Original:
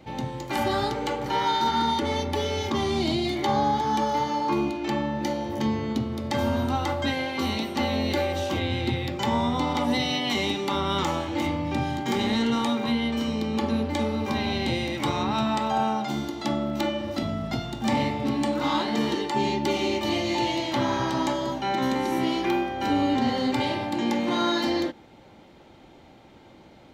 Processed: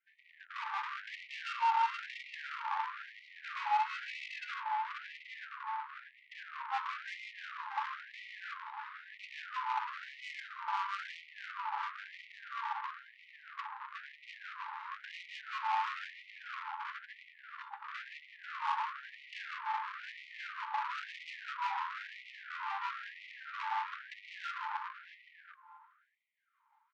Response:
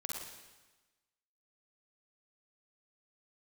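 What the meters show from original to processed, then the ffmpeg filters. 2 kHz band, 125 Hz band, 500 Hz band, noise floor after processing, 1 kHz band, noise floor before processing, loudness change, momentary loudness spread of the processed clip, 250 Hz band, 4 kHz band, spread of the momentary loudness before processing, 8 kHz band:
−7.5 dB, below −40 dB, below −40 dB, −65 dBFS, −9.5 dB, −51 dBFS, −14.0 dB, 14 LU, below −40 dB, −18.5 dB, 4 LU, below −20 dB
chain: -filter_complex "[0:a]afwtdn=0.0398,areverse,acompressor=threshold=-33dB:ratio=6,areverse,acrossover=split=500[link_01][link_02];[link_01]aeval=exprs='val(0)*(1-0.5/2+0.5/2*cos(2*PI*5.7*n/s))':channel_layout=same[link_03];[link_02]aeval=exprs='val(0)*(1-0.5/2-0.5/2*cos(2*PI*5.7*n/s))':channel_layout=same[link_04];[link_03][link_04]amix=inputs=2:normalize=0,asoftclip=type=tanh:threshold=-38.5dB,highshelf=frequency=3100:gain=-7.5,asplit=2[link_05][link_06];[link_06]adelay=635,lowpass=frequency=2200:poles=1,volume=-4dB,asplit=2[link_07][link_08];[link_08]adelay=635,lowpass=frequency=2200:poles=1,volume=0.27,asplit=2[link_09][link_10];[link_10]adelay=635,lowpass=frequency=2200:poles=1,volume=0.27,asplit=2[link_11][link_12];[link_12]adelay=635,lowpass=frequency=2200:poles=1,volume=0.27[link_13];[link_07][link_09][link_11][link_13]amix=inputs=4:normalize=0[link_14];[link_05][link_14]amix=inputs=2:normalize=0,adynamicsmooth=sensitivity=7:basefreq=670,afftfilt=real='re*gte(b*sr/1024,810*pow(1900/810,0.5+0.5*sin(2*PI*1*pts/sr)))':imag='im*gte(b*sr/1024,810*pow(1900/810,0.5+0.5*sin(2*PI*1*pts/sr)))':win_size=1024:overlap=0.75,volume=16.5dB"

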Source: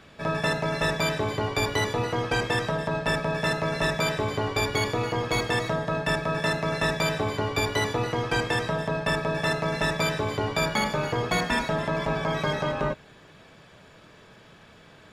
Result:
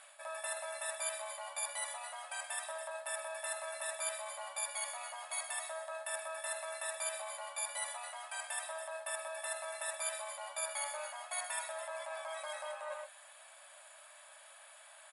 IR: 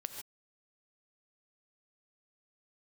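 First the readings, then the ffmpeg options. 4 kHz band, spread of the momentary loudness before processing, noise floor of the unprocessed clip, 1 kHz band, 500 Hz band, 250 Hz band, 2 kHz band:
−15.5 dB, 3 LU, −52 dBFS, −14.5 dB, −16.5 dB, below −40 dB, −15.0 dB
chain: -af "aecho=1:1:126:0.266,areverse,acompressor=threshold=-32dB:ratio=12,areverse,afftfilt=real='re*between(b*sr/4096,540,11000)':imag='im*between(b*sr/4096,540,11000)':win_size=4096:overlap=0.75,aexciter=amount=11.4:drive=9.3:freq=8600,volume=-5dB"

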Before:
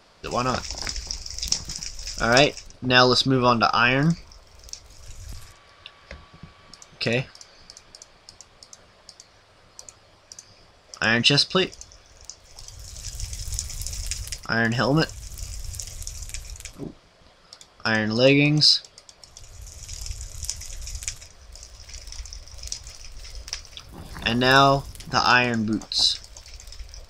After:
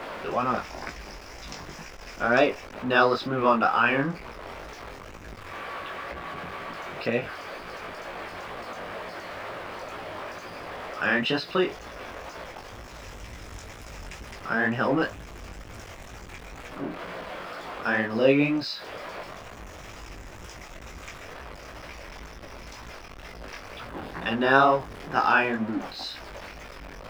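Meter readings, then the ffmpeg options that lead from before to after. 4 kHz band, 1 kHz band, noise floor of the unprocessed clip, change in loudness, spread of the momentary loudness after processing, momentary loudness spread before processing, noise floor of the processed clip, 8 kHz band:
−13.5 dB, −1.5 dB, −55 dBFS, −5.5 dB, 21 LU, 23 LU, −43 dBFS, −17.0 dB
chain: -filter_complex "[0:a]aeval=exprs='val(0)+0.5*0.0596*sgn(val(0))':channel_layout=same,flanger=delay=16.5:depth=5.9:speed=2.1,acrossover=split=210 2600:gain=0.224 1 0.0794[link_01][link_02][link_03];[link_01][link_02][link_03]amix=inputs=3:normalize=0"

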